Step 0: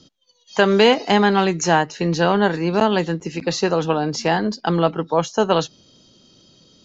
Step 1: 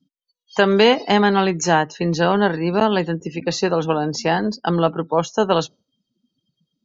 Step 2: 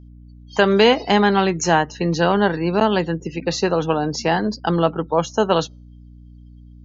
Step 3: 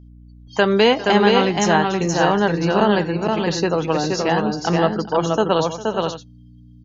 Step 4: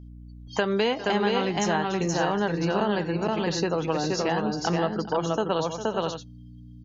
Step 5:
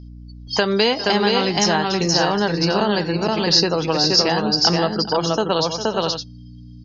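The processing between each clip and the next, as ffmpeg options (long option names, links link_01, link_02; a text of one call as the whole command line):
ffmpeg -i in.wav -af "afftdn=noise_reduction=31:noise_floor=-38" out.wav
ffmpeg -i in.wav -af "aeval=exprs='val(0)+0.00891*(sin(2*PI*60*n/s)+sin(2*PI*2*60*n/s)/2+sin(2*PI*3*60*n/s)/3+sin(2*PI*4*60*n/s)/4+sin(2*PI*5*60*n/s)/5)':channel_layout=same" out.wav
ffmpeg -i in.wav -af "aecho=1:1:402|474|563:0.133|0.668|0.224,volume=-1dB" out.wav
ffmpeg -i in.wav -af "acompressor=threshold=-25dB:ratio=2.5" out.wav
ffmpeg -i in.wav -af "lowpass=frequency=5000:width_type=q:width=8.8,volume=5.5dB" out.wav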